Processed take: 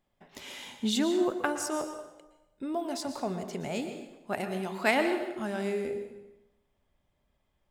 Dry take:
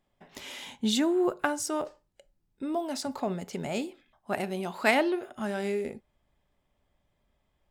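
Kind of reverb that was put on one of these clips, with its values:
dense smooth reverb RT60 0.98 s, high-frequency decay 0.8×, pre-delay 105 ms, DRR 7.5 dB
level −2 dB

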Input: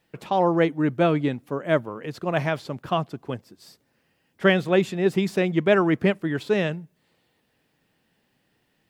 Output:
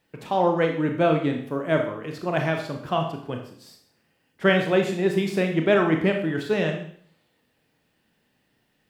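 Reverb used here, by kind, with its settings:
four-comb reverb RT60 0.58 s, combs from 25 ms, DRR 3 dB
level −1.5 dB

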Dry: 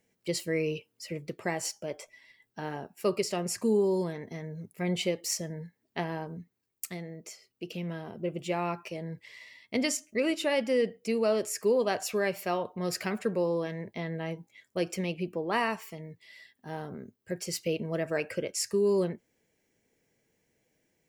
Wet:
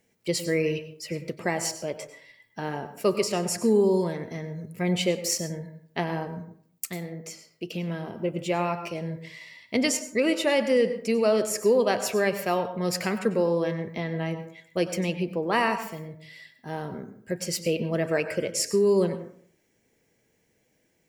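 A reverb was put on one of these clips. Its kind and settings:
dense smooth reverb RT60 0.57 s, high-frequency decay 0.45×, pre-delay 85 ms, DRR 10.5 dB
level +4.5 dB

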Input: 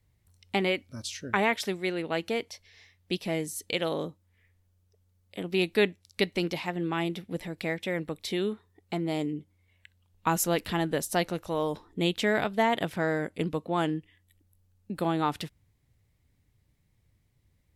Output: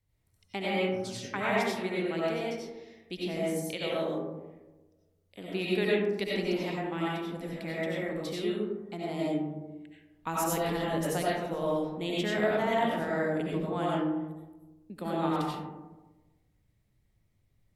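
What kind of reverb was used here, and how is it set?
comb and all-pass reverb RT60 1.2 s, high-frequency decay 0.3×, pre-delay 50 ms, DRR −6 dB
level −9 dB

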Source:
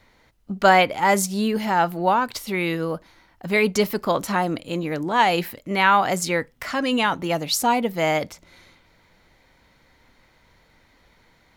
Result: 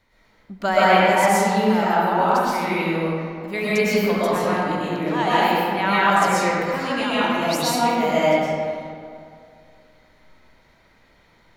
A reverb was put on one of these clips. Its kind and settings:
comb and all-pass reverb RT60 2.3 s, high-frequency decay 0.55×, pre-delay 80 ms, DRR −9.5 dB
level −8 dB

